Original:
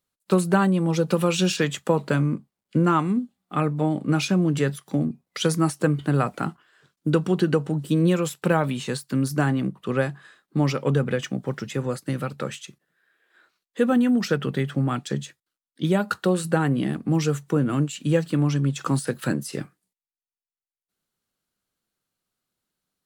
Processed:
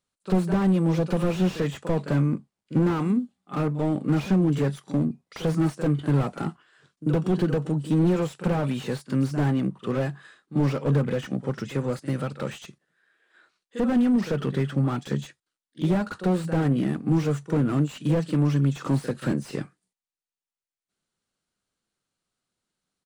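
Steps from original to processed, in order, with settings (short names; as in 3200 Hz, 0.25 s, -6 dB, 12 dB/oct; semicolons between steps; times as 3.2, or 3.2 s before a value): downsampling 22050 Hz; pre-echo 43 ms -16 dB; slew limiter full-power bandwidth 39 Hz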